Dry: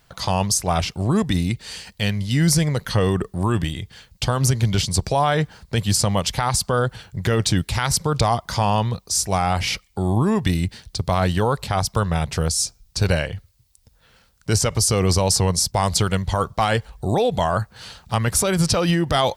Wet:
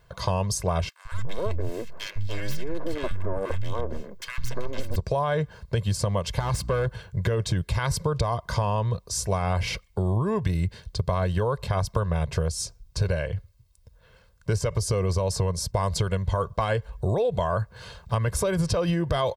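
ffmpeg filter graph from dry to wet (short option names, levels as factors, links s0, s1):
-filter_complex "[0:a]asettb=1/sr,asplit=3[s0][s1][s2];[s0]atrim=end=0.894[s3];[s1]atrim=start=0.89:end=4.96,asetpts=PTS-STARTPTS,afade=t=in:d=0.004:c=qsin,afade=t=out:st=4.066:d=0.004:c=qsin,aeval=exprs='abs(val(0))':c=same,equalizer=f=9600:t=o:w=0.44:g=-4.5,acrossover=split=180|1400[s4][s5][s6];[s4]adelay=160[s7];[s5]adelay=290[s8];[s7][s8][s6]amix=inputs=3:normalize=0,atrim=end_sample=179487[s9];[s2]atrim=start=4.956[s10];[s3][s9]acrossfade=d=0.004:c1=hsin:c2=qsin[s11];[s11][s10]acrossfade=d=0.004:c1=qsin:c2=hsin,asettb=1/sr,asplit=3[s12][s13][s14];[s12]atrim=end=6.394[s15];[s13]atrim=start=6.39:end=6.89,asetpts=PTS-STARTPTS,afade=t=in:d=0.004:c=qsin,afade=t=out:st=0.496:d=0.004:c=qsin,volume=9.44,asoftclip=hard,volume=0.106,aeval=exprs='val(0)+0.0158*(sin(2*PI*60*n/s)+sin(2*PI*2*60*n/s)/2+sin(2*PI*3*60*n/s)/3+sin(2*PI*4*60*n/s)/4+sin(2*PI*5*60*n/s)/5)':c=same[s16];[s14]atrim=start=6.886[s17];[s15][s16]acrossfade=d=0.004:c1=hsin:c2=qsin[s18];[s18][s17]acrossfade=d=0.004:c1=qsin:c2=hsin,highshelf=f=2200:g=-11,aecho=1:1:1.9:0.61,acompressor=threshold=0.0891:ratio=6"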